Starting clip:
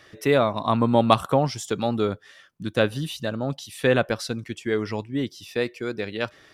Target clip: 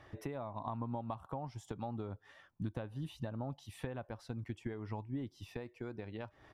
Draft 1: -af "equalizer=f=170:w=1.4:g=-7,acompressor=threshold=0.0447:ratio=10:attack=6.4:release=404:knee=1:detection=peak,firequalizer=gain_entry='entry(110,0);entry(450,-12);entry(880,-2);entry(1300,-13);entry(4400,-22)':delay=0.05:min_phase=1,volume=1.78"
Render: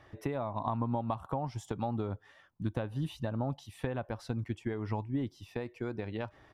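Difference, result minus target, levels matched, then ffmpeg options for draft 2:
compression: peak gain reduction -7 dB
-af "equalizer=f=170:w=1.4:g=-7,acompressor=threshold=0.0178:ratio=10:attack=6.4:release=404:knee=1:detection=peak,firequalizer=gain_entry='entry(110,0);entry(450,-12);entry(880,-2);entry(1300,-13);entry(4400,-22)':delay=0.05:min_phase=1,volume=1.78"

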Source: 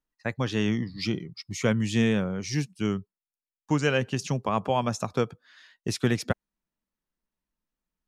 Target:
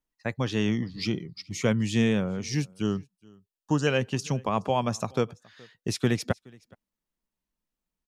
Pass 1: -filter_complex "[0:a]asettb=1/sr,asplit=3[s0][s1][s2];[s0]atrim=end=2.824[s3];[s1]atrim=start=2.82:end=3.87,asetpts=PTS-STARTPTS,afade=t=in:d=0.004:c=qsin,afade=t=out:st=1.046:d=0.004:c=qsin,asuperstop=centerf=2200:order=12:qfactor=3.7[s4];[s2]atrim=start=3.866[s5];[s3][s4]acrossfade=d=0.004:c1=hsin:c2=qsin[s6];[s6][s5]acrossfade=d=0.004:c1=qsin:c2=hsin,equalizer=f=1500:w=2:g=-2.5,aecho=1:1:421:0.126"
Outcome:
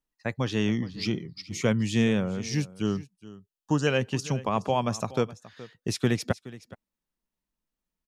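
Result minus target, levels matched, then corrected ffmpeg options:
echo-to-direct +8 dB
-filter_complex "[0:a]asettb=1/sr,asplit=3[s0][s1][s2];[s0]atrim=end=2.824[s3];[s1]atrim=start=2.82:end=3.87,asetpts=PTS-STARTPTS,afade=t=in:d=0.004:c=qsin,afade=t=out:st=1.046:d=0.004:c=qsin,asuperstop=centerf=2200:order=12:qfactor=3.7[s4];[s2]atrim=start=3.866[s5];[s3][s4]acrossfade=d=0.004:c1=hsin:c2=qsin[s6];[s6][s5]acrossfade=d=0.004:c1=qsin:c2=hsin,equalizer=f=1500:w=2:g=-2.5,aecho=1:1:421:0.0501"

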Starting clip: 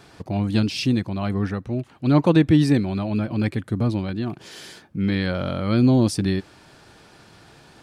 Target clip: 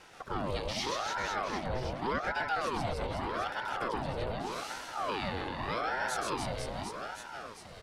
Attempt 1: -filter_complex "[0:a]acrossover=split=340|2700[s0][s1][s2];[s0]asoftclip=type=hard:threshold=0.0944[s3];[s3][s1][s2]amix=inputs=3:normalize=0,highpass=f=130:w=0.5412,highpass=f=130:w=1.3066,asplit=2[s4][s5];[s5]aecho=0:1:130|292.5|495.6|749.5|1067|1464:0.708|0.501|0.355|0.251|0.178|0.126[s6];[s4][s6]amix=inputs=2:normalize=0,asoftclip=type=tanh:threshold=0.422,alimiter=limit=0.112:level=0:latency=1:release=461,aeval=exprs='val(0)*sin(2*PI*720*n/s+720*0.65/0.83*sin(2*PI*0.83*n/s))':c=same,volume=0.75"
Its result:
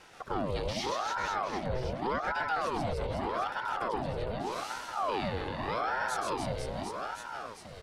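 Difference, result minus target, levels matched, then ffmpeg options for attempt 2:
hard clipper: distortion -5 dB
-filter_complex "[0:a]acrossover=split=340|2700[s0][s1][s2];[s0]asoftclip=type=hard:threshold=0.0335[s3];[s3][s1][s2]amix=inputs=3:normalize=0,highpass=f=130:w=0.5412,highpass=f=130:w=1.3066,asplit=2[s4][s5];[s5]aecho=0:1:130|292.5|495.6|749.5|1067|1464:0.708|0.501|0.355|0.251|0.178|0.126[s6];[s4][s6]amix=inputs=2:normalize=0,asoftclip=type=tanh:threshold=0.422,alimiter=limit=0.112:level=0:latency=1:release=461,aeval=exprs='val(0)*sin(2*PI*720*n/s+720*0.65/0.83*sin(2*PI*0.83*n/s))':c=same,volume=0.75"

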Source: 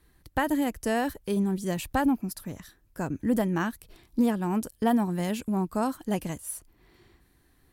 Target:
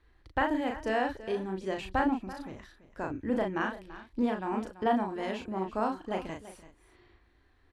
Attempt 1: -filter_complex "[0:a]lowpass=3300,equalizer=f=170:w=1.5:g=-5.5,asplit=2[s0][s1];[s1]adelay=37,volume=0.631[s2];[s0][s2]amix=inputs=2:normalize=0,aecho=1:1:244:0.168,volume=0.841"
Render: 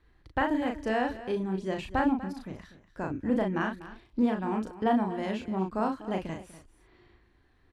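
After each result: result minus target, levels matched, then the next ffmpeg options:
echo 91 ms early; 125 Hz band +3.5 dB
-filter_complex "[0:a]lowpass=3300,equalizer=f=170:w=1.5:g=-5.5,asplit=2[s0][s1];[s1]adelay=37,volume=0.631[s2];[s0][s2]amix=inputs=2:normalize=0,aecho=1:1:335:0.168,volume=0.841"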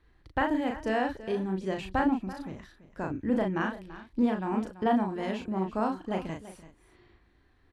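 125 Hz band +3.5 dB
-filter_complex "[0:a]lowpass=3300,equalizer=f=170:w=1.5:g=-13,asplit=2[s0][s1];[s1]adelay=37,volume=0.631[s2];[s0][s2]amix=inputs=2:normalize=0,aecho=1:1:335:0.168,volume=0.841"

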